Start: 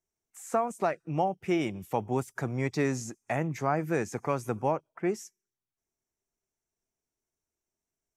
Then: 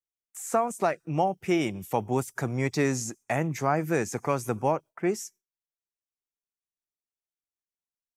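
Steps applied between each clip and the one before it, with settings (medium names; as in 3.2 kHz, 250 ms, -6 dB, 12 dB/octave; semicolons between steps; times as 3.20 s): gate with hold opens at -54 dBFS; treble shelf 5.1 kHz +7 dB; trim +2.5 dB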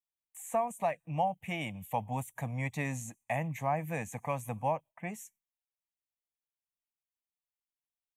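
static phaser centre 1.4 kHz, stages 6; trim -3.5 dB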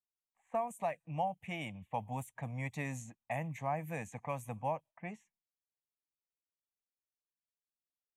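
level-controlled noise filter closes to 630 Hz, open at -31.5 dBFS; trim -4.5 dB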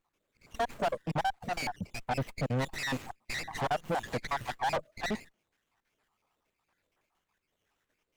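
random holes in the spectrogram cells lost 70%; overdrive pedal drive 37 dB, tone 2.5 kHz, clips at -23.5 dBFS; sliding maximum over 9 samples; trim +2 dB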